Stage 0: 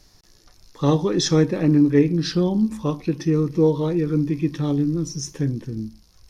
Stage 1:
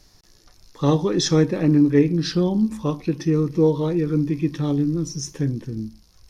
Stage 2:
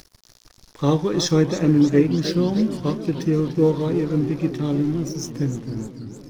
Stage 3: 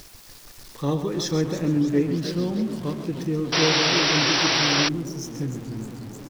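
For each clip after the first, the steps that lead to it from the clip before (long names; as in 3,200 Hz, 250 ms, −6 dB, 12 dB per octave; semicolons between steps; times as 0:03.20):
no processing that can be heard
upward compression, threshold −33 dBFS; dead-zone distortion −41 dBFS; feedback echo with a swinging delay time 302 ms, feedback 71%, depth 203 cents, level −12.5 dB
converter with a step at zero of −31 dBFS; single-tap delay 133 ms −10 dB; sound drawn into the spectrogram noise, 0:03.52–0:04.89, 290–5,900 Hz −15 dBFS; level −6.5 dB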